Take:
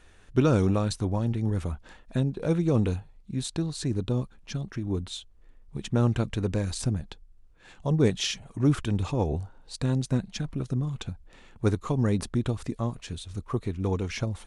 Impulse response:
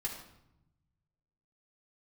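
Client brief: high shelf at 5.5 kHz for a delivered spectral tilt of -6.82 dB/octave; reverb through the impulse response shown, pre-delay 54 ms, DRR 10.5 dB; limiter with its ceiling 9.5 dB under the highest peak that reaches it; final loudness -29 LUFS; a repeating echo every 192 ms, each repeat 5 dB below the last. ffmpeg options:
-filter_complex "[0:a]highshelf=f=5500:g=-3.5,alimiter=limit=0.112:level=0:latency=1,aecho=1:1:192|384|576|768|960|1152|1344:0.562|0.315|0.176|0.0988|0.0553|0.031|0.0173,asplit=2[s0][s1];[1:a]atrim=start_sample=2205,adelay=54[s2];[s1][s2]afir=irnorm=-1:irlink=0,volume=0.251[s3];[s0][s3]amix=inputs=2:normalize=0,volume=1.06"

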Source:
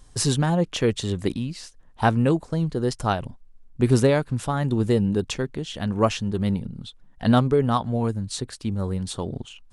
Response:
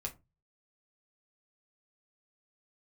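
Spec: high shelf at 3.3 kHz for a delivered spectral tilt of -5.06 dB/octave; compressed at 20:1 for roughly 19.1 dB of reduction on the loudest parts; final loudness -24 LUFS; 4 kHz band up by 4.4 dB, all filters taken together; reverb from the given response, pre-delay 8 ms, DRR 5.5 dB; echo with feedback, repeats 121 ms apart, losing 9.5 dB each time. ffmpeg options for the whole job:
-filter_complex "[0:a]highshelf=f=3300:g=3.5,equalizer=f=4000:t=o:g=3,acompressor=threshold=0.0251:ratio=20,aecho=1:1:121|242|363|484:0.335|0.111|0.0365|0.012,asplit=2[s0][s1];[1:a]atrim=start_sample=2205,adelay=8[s2];[s1][s2]afir=irnorm=-1:irlink=0,volume=0.562[s3];[s0][s3]amix=inputs=2:normalize=0,volume=3.55"

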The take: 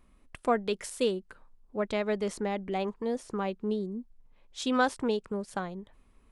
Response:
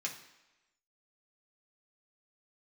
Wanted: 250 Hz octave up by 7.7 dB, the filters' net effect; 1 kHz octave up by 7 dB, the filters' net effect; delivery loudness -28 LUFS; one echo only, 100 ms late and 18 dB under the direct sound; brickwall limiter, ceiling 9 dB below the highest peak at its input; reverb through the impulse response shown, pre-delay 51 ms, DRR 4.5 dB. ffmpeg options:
-filter_complex "[0:a]equalizer=f=250:t=o:g=8.5,equalizer=f=1000:t=o:g=9,alimiter=limit=0.158:level=0:latency=1,aecho=1:1:100:0.126,asplit=2[s0][s1];[1:a]atrim=start_sample=2205,adelay=51[s2];[s1][s2]afir=irnorm=-1:irlink=0,volume=0.501[s3];[s0][s3]amix=inputs=2:normalize=0,volume=0.944"

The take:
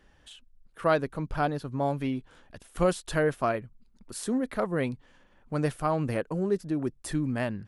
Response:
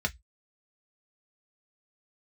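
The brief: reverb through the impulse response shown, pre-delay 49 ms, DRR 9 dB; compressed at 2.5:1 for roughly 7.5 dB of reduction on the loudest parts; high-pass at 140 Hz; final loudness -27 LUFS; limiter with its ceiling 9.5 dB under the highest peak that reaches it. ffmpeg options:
-filter_complex "[0:a]highpass=140,acompressor=threshold=0.0282:ratio=2.5,alimiter=level_in=1.5:limit=0.0631:level=0:latency=1,volume=0.668,asplit=2[s0][s1];[1:a]atrim=start_sample=2205,adelay=49[s2];[s1][s2]afir=irnorm=-1:irlink=0,volume=0.158[s3];[s0][s3]amix=inputs=2:normalize=0,volume=3.55"

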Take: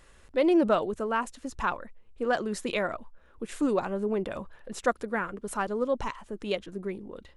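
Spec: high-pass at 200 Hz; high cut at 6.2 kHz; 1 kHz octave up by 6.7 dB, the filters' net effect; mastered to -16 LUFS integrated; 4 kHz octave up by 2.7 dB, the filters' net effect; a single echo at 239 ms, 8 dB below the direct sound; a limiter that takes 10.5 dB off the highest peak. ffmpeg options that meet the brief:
-af "highpass=200,lowpass=6200,equalizer=f=1000:t=o:g=8.5,equalizer=f=4000:t=o:g=3.5,alimiter=limit=0.133:level=0:latency=1,aecho=1:1:239:0.398,volume=5.01"

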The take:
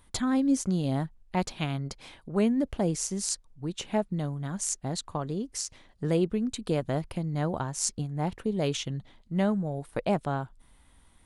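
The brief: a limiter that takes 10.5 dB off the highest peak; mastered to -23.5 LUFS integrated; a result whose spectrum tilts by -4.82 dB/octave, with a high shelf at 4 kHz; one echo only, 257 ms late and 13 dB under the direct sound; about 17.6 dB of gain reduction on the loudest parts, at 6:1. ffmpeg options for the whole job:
-af "highshelf=f=4000:g=5.5,acompressor=threshold=0.01:ratio=6,alimiter=level_in=2.82:limit=0.0631:level=0:latency=1,volume=0.355,aecho=1:1:257:0.224,volume=11.2"

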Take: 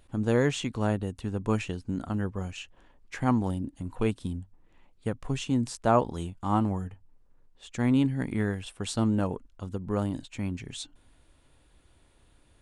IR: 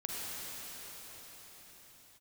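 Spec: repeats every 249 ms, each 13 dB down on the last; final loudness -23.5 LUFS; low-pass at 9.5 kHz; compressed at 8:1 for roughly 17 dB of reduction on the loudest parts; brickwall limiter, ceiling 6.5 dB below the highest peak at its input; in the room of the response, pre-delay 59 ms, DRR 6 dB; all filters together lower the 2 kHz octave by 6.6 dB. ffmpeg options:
-filter_complex "[0:a]lowpass=9500,equalizer=f=2000:t=o:g=-9,acompressor=threshold=0.0141:ratio=8,alimiter=level_in=2.37:limit=0.0631:level=0:latency=1,volume=0.422,aecho=1:1:249|498|747:0.224|0.0493|0.0108,asplit=2[s0][s1];[1:a]atrim=start_sample=2205,adelay=59[s2];[s1][s2]afir=irnorm=-1:irlink=0,volume=0.316[s3];[s0][s3]amix=inputs=2:normalize=0,volume=10"

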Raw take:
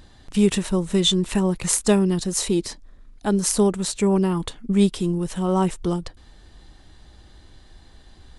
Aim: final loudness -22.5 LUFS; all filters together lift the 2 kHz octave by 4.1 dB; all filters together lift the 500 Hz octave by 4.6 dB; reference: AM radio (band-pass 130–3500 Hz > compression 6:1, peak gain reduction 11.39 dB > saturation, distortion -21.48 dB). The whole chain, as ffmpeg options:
-af "highpass=130,lowpass=3500,equalizer=f=500:t=o:g=6.5,equalizer=f=2000:t=o:g=5.5,acompressor=threshold=0.0891:ratio=6,asoftclip=threshold=0.168,volume=1.78"

